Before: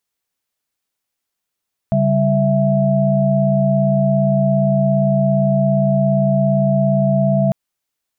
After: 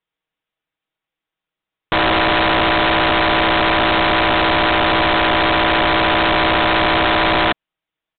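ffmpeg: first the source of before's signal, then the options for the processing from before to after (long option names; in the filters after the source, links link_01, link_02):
-f lavfi -i "aevalsrc='0.15*(sin(2*PI*138.59*t)+sin(2*PI*196*t)+sin(2*PI*659.26*t))':duration=5.6:sample_rate=44100"
-af "aecho=1:1:6.3:0.49,aresample=8000,aeval=exprs='(mod(3.16*val(0)+1,2)-1)/3.16':channel_layout=same,aresample=44100"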